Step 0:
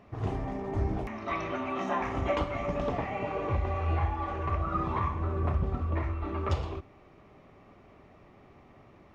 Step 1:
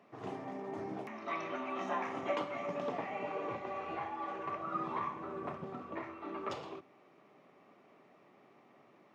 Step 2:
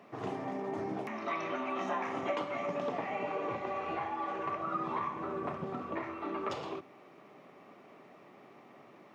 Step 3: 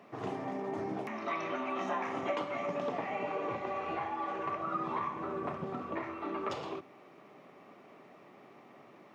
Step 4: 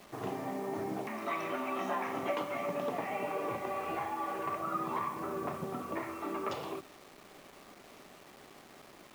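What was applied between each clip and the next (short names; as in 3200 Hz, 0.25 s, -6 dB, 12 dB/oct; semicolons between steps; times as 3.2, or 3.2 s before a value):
Bessel high-pass 240 Hz, order 8; gain -5 dB
compressor 2:1, threshold -42 dBFS, peak gain reduction 7 dB; gain +7 dB
nothing audible
bit-crush 9-bit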